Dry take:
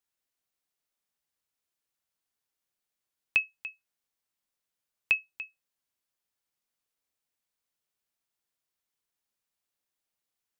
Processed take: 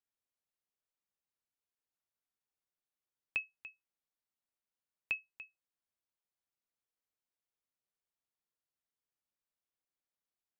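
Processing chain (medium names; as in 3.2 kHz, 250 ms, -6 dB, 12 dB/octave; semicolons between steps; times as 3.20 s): treble shelf 2.4 kHz -7.5 dB; trim -6.5 dB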